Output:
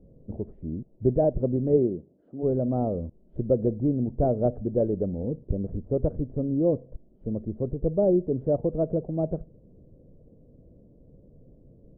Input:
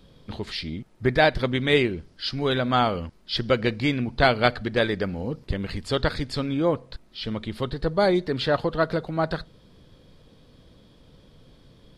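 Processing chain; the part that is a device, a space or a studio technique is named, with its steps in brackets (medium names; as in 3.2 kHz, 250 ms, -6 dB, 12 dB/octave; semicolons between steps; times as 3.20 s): under water (low-pass 500 Hz 24 dB/octave; peaking EQ 630 Hz +6.5 dB 0.54 oct); 1.76–2.42 s: high-pass 100 Hz -> 330 Hz 12 dB/octave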